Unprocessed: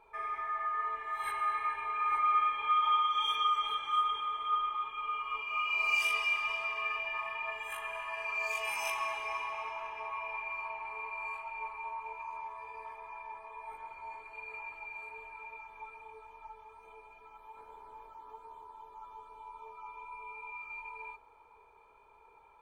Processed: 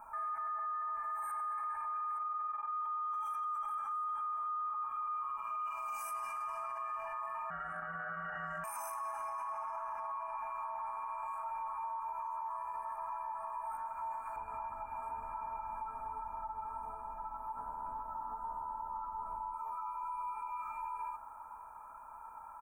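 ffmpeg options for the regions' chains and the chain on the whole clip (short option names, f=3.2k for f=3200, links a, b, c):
-filter_complex "[0:a]asettb=1/sr,asplit=3[a][b][c];[a]atrim=end=2.174[d];[b]atrim=start=2.17:end=2.73,asetpts=PTS-STARTPTS,afade=t=in:d=0.004:c=qsin,afade=t=out:st=0.556:d=0.004:c=qsin,equalizer=f=460:w=0.76:g=7.5,tremolo=f=21:d=0.857[e];[c]atrim=start=2.726[f];[d][e]acrossfade=d=0.004:c1=hsin:c2=qsin[g];[g][f]acrossfade=d=0.004:c1=qsin:c2=hsin,asettb=1/sr,asplit=3[h][i][j];[h]atrim=end=7.504[k];[i]atrim=start=7.5:end=8.64,asetpts=PTS-STARTPTS,afade=t=in:d=0.004:c=qsin,afade=t=out:st=1.136:d=0.004:c=qsin,lowpass=2k,aeval=exprs='val(0)*sin(2*PI*490*n/s)':c=same[l];[j]atrim=start=8.636[m];[k][l]acrossfade=d=0.004:c1=hsin:c2=qsin[n];[n][m]acrossfade=d=0.004:c1=qsin:c2=hsin,asettb=1/sr,asplit=3[o][p][q];[o]atrim=end=14.364[r];[p]atrim=start=14.36:end=19.54,asetpts=PTS-STARTPTS,afade=t=in:d=0.004:c=qsin,afade=t=out:st=5.176:d=0.004:c=qsin,tiltshelf=f=870:g=8.5,aecho=1:1:749:0.501,atrim=end_sample=228438[s];[q]atrim=start=19.536[t];[r][s]acrossfade=d=0.004:c1=hsin:c2=qsin[u];[u][t]acrossfade=d=0.004:c1=qsin:c2=hsin,firequalizer=gain_entry='entry(140,0);entry(250,6);entry(410,-21);entry(600,3);entry(1400,12);entry(2100,-11);entry(3400,-27);entry(5700,-2);entry(9300,11)':delay=0.05:min_phase=1,alimiter=level_in=14dB:limit=-24dB:level=0:latency=1:release=95,volume=-14dB,volume=4.5dB"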